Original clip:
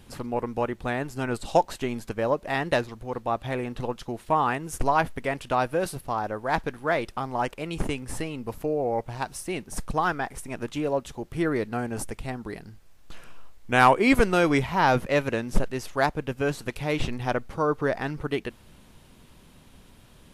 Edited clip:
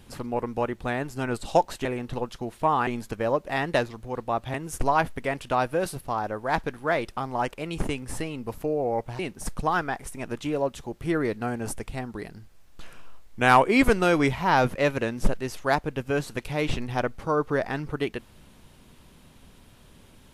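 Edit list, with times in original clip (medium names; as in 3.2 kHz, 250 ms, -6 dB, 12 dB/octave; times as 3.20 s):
3.52–4.54 s: move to 1.85 s
9.19–9.50 s: delete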